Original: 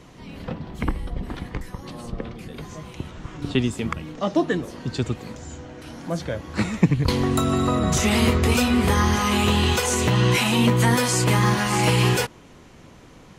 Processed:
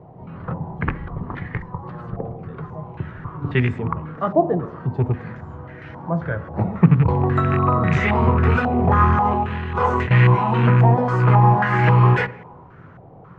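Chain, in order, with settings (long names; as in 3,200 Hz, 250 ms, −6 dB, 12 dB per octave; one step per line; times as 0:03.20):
loose part that buzzes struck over −19 dBFS, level −16 dBFS
on a send at −12.5 dB: convolution reverb RT60 1.0 s, pre-delay 3 ms
0:09.25–0:10.11: on the sum: compressor whose output falls as the input rises −22 dBFS, ratio −1
low-pass on a step sequencer 3.7 Hz 750–1,900 Hz
level −1.5 dB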